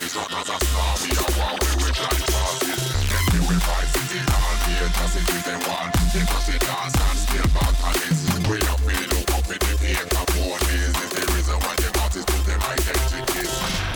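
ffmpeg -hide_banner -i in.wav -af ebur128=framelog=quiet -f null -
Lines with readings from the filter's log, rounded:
Integrated loudness:
  I:         -22.1 LUFS
  Threshold: -32.1 LUFS
Loudness range:
  LRA:         0.8 LU
  Threshold: -42.0 LUFS
  LRA low:   -22.4 LUFS
  LRA high:  -21.6 LUFS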